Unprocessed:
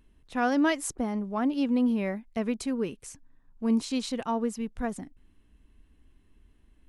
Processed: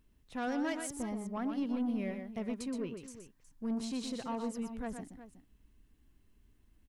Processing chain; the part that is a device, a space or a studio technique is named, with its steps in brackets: 2.68–3.08 LPF 4400 Hz 24 dB/oct; open-reel tape (soft clip -23 dBFS, distortion -14 dB; bell 130 Hz +4 dB 0.97 oct; white noise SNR 47 dB); tapped delay 0.122/0.366 s -7/-14 dB; gain -7.5 dB

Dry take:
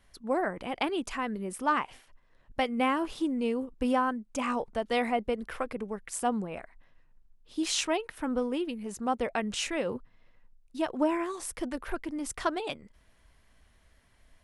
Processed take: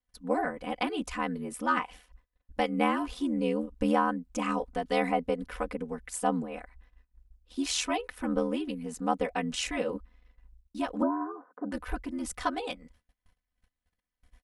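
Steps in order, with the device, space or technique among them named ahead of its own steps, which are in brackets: 11.02–11.72 Chebyshev band-pass 230–1500 Hz, order 5; gate -57 dBFS, range -26 dB; ring-modulated robot voice (ring modulator 41 Hz; comb 4 ms, depth 87%)

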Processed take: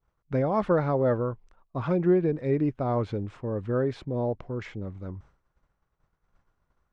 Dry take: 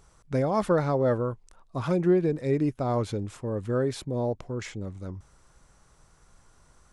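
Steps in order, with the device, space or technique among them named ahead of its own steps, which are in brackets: hearing-loss simulation (LPF 2700 Hz 12 dB/oct; expander -47 dBFS)

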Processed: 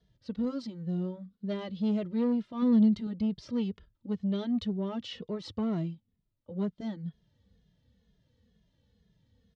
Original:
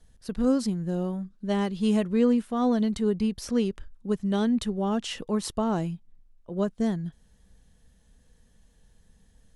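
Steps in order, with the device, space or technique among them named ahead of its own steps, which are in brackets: barber-pole flanger into a guitar amplifier (endless flanger 2.4 ms -2.1 Hz; soft clip -23 dBFS, distortion -13 dB; speaker cabinet 80–4400 Hz, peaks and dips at 99 Hz +6 dB, 380 Hz -3 dB, 760 Hz -9 dB, 1100 Hz -6 dB, 1600 Hz -9 dB, 2500 Hz -6 dB); 2.62–3.07 bell 220 Hz +7.5 dB 0.38 oct

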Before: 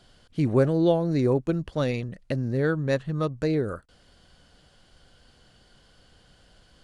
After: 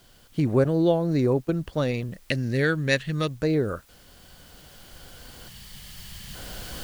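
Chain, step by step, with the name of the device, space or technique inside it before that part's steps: 0.64–1.53 gate -28 dBFS, range -14 dB; 2.24–3.29 resonant high shelf 1500 Hz +10 dB, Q 1.5; 5.49–6.35 spectral delete 230–1600 Hz; cheap recorder with automatic gain (white noise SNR 35 dB; recorder AGC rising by 5.5 dB/s)

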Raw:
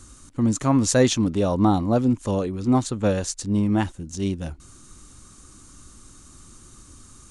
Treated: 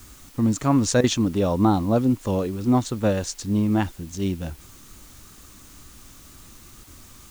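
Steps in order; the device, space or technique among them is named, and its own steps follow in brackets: worn cassette (LPF 7300 Hz 12 dB/oct; wow and flutter; level dips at 1.01/6.84, 27 ms -13 dB; white noise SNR 27 dB)

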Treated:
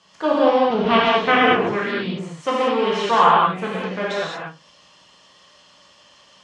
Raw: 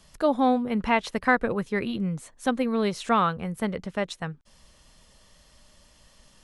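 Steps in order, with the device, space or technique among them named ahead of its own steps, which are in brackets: 0.7–1.54 tone controls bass +13 dB, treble -11 dB; flutter echo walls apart 9.4 m, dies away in 0.22 s; full-range speaker at full volume (Doppler distortion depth 0.88 ms; speaker cabinet 210–6800 Hz, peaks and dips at 220 Hz -5 dB, 1100 Hz +7 dB, 3000 Hz +6 dB); non-linear reverb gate 0.25 s flat, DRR -7 dB; gain -1 dB

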